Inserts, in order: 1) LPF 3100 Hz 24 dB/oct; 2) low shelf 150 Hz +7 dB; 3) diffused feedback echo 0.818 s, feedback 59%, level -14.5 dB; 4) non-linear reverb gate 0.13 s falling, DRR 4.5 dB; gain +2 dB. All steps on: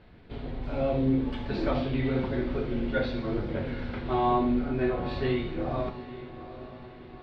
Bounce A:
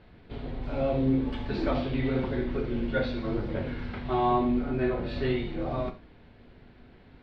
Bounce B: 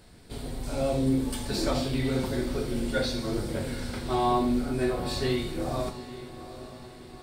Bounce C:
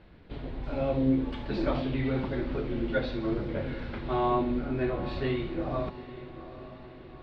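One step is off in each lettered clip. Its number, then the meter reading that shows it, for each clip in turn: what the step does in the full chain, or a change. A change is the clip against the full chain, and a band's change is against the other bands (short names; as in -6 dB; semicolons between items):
3, momentary loudness spread change -7 LU; 1, 4 kHz band +8.0 dB; 4, echo-to-direct -3.5 dB to -12.5 dB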